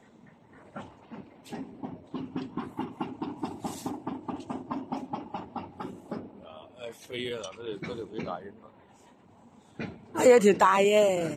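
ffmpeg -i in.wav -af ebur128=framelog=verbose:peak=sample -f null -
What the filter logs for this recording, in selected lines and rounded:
Integrated loudness:
  I:         -28.4 LUFS
  Threshold: -40.5 LUFS
Loudness range:
  LRA:        13.5 LU
  Threshold: -53.9 LUFS
  LRA low:   -39.6 LUFS
  LRA high:  -26.1 LUFS
Sample peak:
  Peak:       -7.7 dBFS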